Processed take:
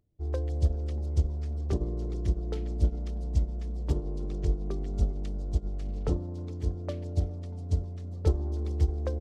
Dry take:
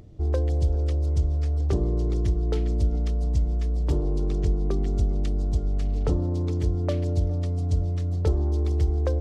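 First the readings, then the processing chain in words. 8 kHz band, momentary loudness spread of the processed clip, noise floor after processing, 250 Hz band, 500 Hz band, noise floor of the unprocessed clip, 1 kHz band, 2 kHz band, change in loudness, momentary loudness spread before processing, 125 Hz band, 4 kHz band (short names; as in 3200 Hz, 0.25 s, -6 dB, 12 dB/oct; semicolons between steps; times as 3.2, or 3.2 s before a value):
n/a, 6 LU, -38 dBFS, -6.5 dB, -6.5 dB, -26 dBFS, -6.5 dB, -7.0 dB, -6.0 dB, 3 LU, -6.0 dB, -6.5 dB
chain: frequency-shifting echo 0.319 s, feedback 51%, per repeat +150 Hz, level -20.5 dB; upward expander 2.5:1, over -36 dBFS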